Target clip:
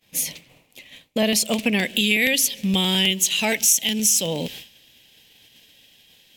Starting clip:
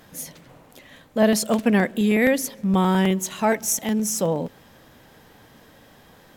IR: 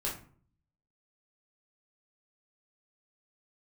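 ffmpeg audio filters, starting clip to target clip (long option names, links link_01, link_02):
-af "agate=range=-33dB:threshold=-39dB:ratio=3:detection=peak,asetnsamples=nb_out_samples=441:pad=0,asendcmd='1.79 highshelf g 14',highshelf=frequency=1900:width_type=q:width=3:gain=8.5,acompressor=threshold=-25dB:ratio=2.5,volume=4dB"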